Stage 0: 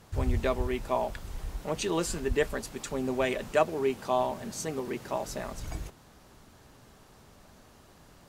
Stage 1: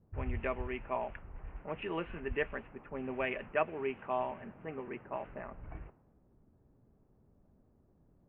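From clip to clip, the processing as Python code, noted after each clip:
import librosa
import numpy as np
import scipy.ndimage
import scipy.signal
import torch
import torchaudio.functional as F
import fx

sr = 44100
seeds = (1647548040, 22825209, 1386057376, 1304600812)

y = fx.env_lowpass(x, sr, base_hz=320.0, full_db=-24.0)
y = scipy.signal.sosfilt(scipy.signal.butter(12, 2800.0, 'lowpass', fs=sr, output='sos'), y)
y = fx.tilt_shelf(y, sr, db=-5.0, hz=1500.0)
y = F.gain(torch.from_numpy(y), -4.0).numpy()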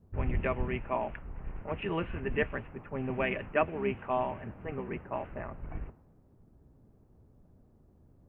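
y = fx.octave_divider(x, sr, octaves=1, level_db=1.0)
y = F.gain(torch.from_numpy(y), 3.5).numpy()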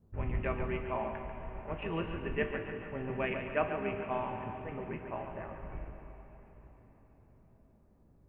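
y = fx.comb_fb(x, sr, f0_hz=55.0, decay_s=0.23, harmonics='all', damping=0.0, mix_pct=70)
y = fx.echo_feedback(y, sr, ms=141, feedback_pct=54, wet_db=-9)
y = fx.rev_plate(y, sr, seeds[0], rt60_s=4.8, hf_ratio=0.9, predelay_ms=0, drr_db=7.5)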